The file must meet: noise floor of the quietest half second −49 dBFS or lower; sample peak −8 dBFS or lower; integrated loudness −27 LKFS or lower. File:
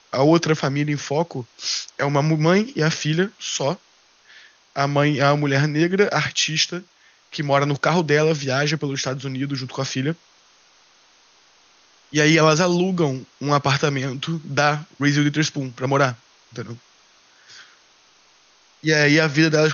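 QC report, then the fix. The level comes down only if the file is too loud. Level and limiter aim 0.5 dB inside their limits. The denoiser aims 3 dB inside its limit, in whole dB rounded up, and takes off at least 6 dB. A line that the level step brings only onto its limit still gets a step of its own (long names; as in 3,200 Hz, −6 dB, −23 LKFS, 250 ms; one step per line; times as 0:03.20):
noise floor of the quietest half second −56 dBFS: in spec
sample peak −4.0 dBFS: out of spec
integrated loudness −20.0 LKFS: out of spec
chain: level −7.5 dB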